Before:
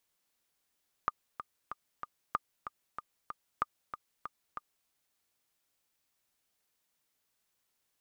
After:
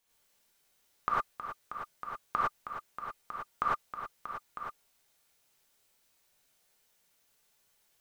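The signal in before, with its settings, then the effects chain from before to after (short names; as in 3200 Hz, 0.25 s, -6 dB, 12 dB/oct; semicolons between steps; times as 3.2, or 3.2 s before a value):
metronome 189 bpm, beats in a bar 4, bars 3, 1210 Hz, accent 10.5 dB -15.5 dBFS
non-linear reverb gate 0.13 s rising, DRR -7.5 dB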